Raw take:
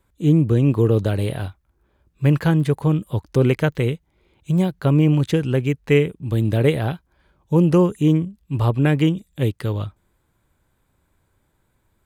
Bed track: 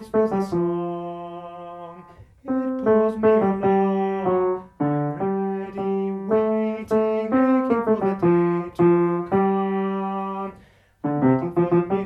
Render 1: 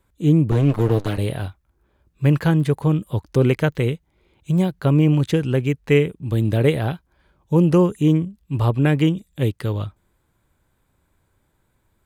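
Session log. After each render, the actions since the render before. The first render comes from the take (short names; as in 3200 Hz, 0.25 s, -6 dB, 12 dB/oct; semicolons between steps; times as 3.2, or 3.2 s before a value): 0.51–1.18 minimum comb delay 6.7 ms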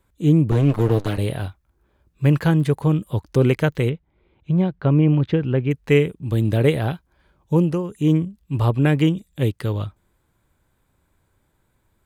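3.89–5.71 air absorption 300 m; 7.53–8.13 dip -12.5 dB, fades 0.30 s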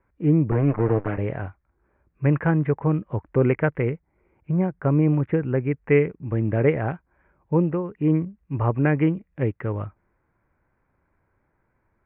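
steep low-pass 2300 Hz 48 dB/oct; low shelf 250 Hz -5.5 dB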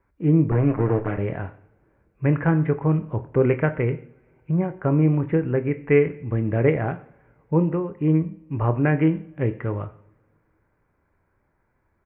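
doubler 25 ms -13 dB; two-slope reverb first 0.59 s, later 3.2 s, from -28 dB, DRR 11 dB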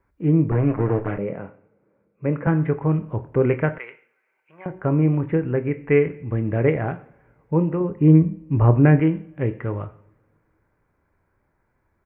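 1.18–2.47 speaker cabinet 190–2400 Hz, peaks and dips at 190 Hz +6 dB, 340 Hz -4 dB, 510 Hz +6 dB, 720 Hz -6 dB, 1000 Hz -4 dB, 1700 Hz -10 dB; 3.78–4.66 HPF 1300 Hz; 7.8–9 low shelf 470 Hz +8 dB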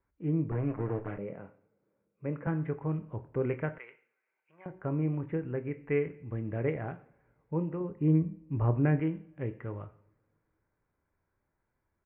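gain -12 dB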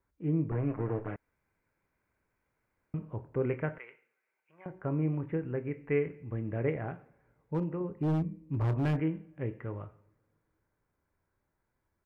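1.16–2.94 room tone; 7.54–9 hard clip -25.5 dBFS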